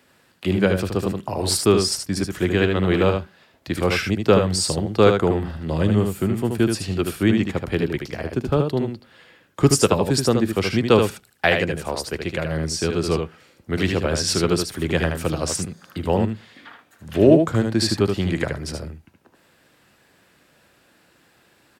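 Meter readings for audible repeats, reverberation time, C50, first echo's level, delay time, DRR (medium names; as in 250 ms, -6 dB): 1, no reverb, no reverb, -5.5 dB, 76 ms, no reverb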